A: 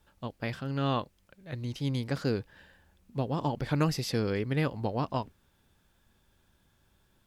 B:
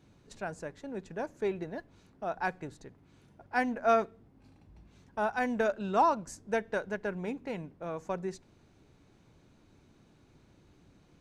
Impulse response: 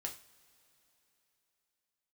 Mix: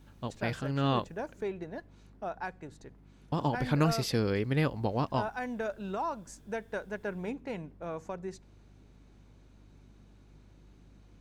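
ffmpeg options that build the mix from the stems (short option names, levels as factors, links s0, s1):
-filter_complex "[0:a]volume=1.06,asplit=3[s0][s1][s2];[s0]atrim=end=1.43,asetpts=PTS-STARTPTS,afade=t=out:st=1.426:d=0.004:c=hsin[s3];[s1]atrim=start=1.43:end=3.32,asetpts=PTS-STARTPTS,volume=0[s4];[s2]atrim=start=3.32,asetpts=PTS-STARTPTS,afade=t=in:d=0.004:c=hsin[s5];[s3][s4][s5]concat=n=3:v=0:a=1[s6];[1:a]alimiter=level_in=1.19:limit=0.0631:level=0:latency=1:release=405,volume=0.841,aeval=exprs='val(0)+0.00158*(sin(2*PI*50*n/s)+sin(2*PI*2*50*n/s)/2+sin(2*PI*3*50*n/s)/3+sin(2*PI*4*50*n/s)/4+sin(2*PI*5*50*n/s)/5)':c=same,volume=0.944[s7];[s6][s7]amix=inputs=2:normalize=0"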